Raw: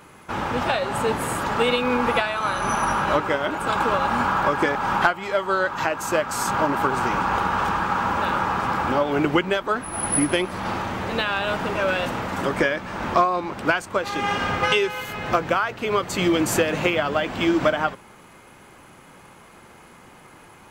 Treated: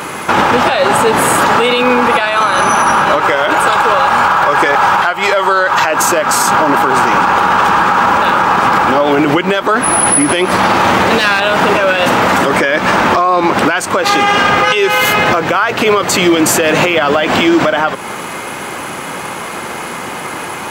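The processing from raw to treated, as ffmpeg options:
-filter_complex "[0:a]asettb=1/sr,asplit=3[a][b][c];[a]atrim=end=3.174[d];[b]atrim=start=3.17:end=5.91,asetpts=PTS-STARTPTS,afade=t=in:d=0.004:c=qsin,afade=t=out:st=2.736:d=0.004:c=qsin,equalizer=f=250:w=1.5:g=-9[e];[c]atrim=start=5.906[f];[d][e]acrossfade=d=0.004:c1=hsin:c2=qsin[g];[g][f]acrossfade=d=0.004:c1=qsin:c2=hsin,asettb=1/sr,asplit=3[h][i][j];[h]atrim=end=10.764[k];[i]atrim=start=10.76:end=11.4,asetpts=PTS-STARTPTS,afade=t=in:d=0.004:c=qsin,afade=t=out:st=0.636:d=0.004:c=qsin,aeval=exprs='clip(val(0),-1,0.0562)':c=same[l];[j]atrim=start=11.396[m];[k][l]acrossfade=d=0.004:c1=hsin:c2=qsin[n];[n][m]acrossfade=d=0.004:c1=qsin:c2=hsin,highpass=f=280:p=1,acompressor=threshold=-28dB:ratio=6,alimiter=level_in=27dB:limit=-1dB:release=50:level=0:latency=1,volume=-1dB"

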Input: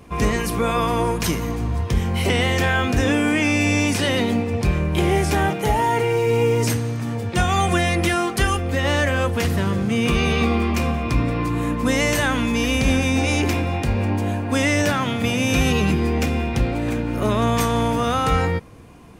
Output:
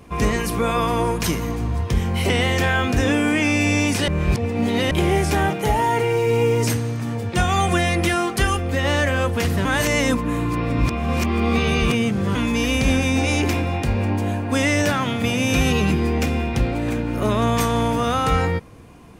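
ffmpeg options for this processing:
-filter_complex "[0:a]asplit=5[a][b][c][d][e];[a]atrim=end=4.082[f];[b]atrim=start=4.078:end=4.912,asetpts=PTS-STARTPTS,areverse[g];[c]atrim=start=4.908:end=9.652[h];[d]atrim=start=9.648:end=12.352,asetpts=PTS-STARTPTS,areverse[i];[e]atrim=start=12.348[j];[f][g]acrossfade=d=0.004:c1=hsin:c2=hsin[k];[k][h]acrossfade=d=0.004:c1=hsin:c2=hsin[l];[l][i]acrossfade=d=0.004:c1=hsin:c2=hsin[m];[m][j]acrossfade=d=0.004:c1=hsin:c2=hsin"

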